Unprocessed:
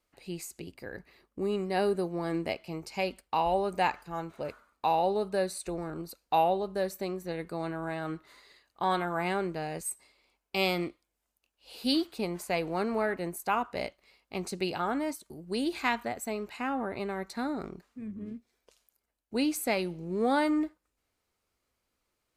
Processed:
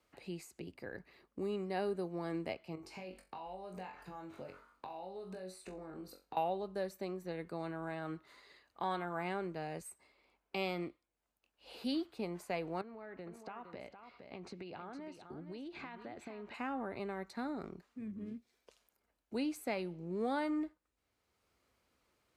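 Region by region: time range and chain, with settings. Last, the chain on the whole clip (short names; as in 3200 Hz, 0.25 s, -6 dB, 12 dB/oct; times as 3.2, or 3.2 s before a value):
2.75–6.37 compressor 10:1, threshold -41 dBFS + flutter echo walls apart 3.7 m, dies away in 0.25 s
12.81–16.54 LPF 4200 Hz + compressor 16:1, threshold -39 dBFS + echo 0.462 s -10.5 dB
whole clip: HPF 47 Hz; high shelf 5600 Hz -8 dB; three-band squash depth 40%; gain -7 dB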